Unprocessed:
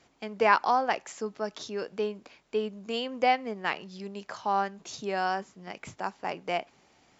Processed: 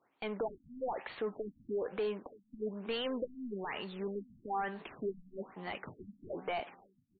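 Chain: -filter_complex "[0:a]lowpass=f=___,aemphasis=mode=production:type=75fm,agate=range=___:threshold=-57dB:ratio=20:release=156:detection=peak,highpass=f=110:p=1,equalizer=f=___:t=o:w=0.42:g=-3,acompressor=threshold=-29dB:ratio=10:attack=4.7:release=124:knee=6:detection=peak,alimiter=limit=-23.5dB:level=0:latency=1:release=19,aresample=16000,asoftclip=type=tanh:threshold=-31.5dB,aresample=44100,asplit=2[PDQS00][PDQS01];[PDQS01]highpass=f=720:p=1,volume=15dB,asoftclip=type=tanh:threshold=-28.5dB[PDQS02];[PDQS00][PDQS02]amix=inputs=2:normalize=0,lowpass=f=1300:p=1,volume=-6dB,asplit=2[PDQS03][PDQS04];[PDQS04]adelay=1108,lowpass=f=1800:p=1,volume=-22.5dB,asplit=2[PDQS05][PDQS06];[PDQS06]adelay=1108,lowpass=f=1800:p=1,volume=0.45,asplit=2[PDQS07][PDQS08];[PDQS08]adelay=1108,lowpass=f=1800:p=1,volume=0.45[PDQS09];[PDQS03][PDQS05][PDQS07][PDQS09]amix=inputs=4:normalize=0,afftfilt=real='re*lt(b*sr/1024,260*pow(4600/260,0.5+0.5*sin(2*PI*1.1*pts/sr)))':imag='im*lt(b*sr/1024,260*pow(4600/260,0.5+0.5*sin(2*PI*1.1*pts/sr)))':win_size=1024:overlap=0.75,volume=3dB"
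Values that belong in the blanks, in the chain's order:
6300, -16dB, 670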